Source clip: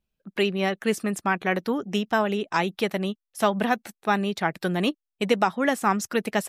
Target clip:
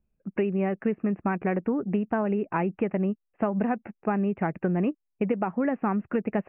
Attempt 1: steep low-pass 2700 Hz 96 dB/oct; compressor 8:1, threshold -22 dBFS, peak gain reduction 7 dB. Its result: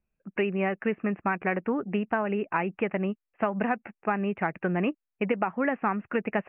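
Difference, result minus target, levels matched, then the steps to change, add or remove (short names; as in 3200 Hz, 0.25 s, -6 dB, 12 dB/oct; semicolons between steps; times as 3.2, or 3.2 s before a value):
1000 Hz band +3.0 dB
add after steep low-pass: tilt shelf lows +7 dB, about 800 Hz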